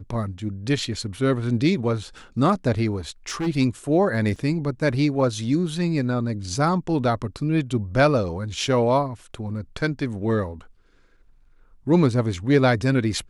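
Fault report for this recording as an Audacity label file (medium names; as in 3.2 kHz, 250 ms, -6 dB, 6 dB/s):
3.290000	3.480000	clipped -22.5 dBFS
4.360000	4.360000	dropout 2.2 ms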